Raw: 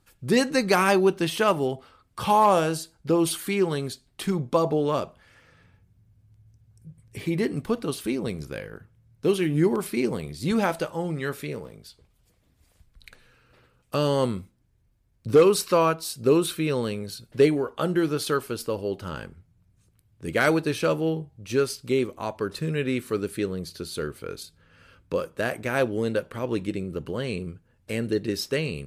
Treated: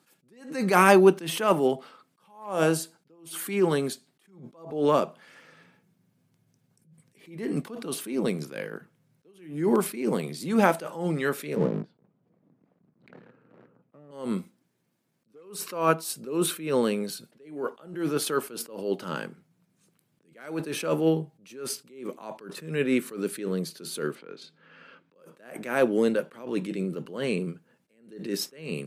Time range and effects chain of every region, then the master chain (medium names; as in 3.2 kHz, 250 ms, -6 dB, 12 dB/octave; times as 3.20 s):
11.56–14.11 s: low-pass 1.1 kHz + bass shelf 370 Hz +12 dB + waveshaping leveller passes 2
24.15–25.16 s: band-pass 130–3100 Hz + compression 3:1, threshold -41 dBFS + tape noise reduction on one side only encoder only
whole clip: steep high-pass 160 Hz 36 dB/octave; dynamic bell 4.3 kHz, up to -6 dB, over -45 dBFS, Q 1.3; attacks held to a fixed rise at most 110 dB/s; trim +4 dB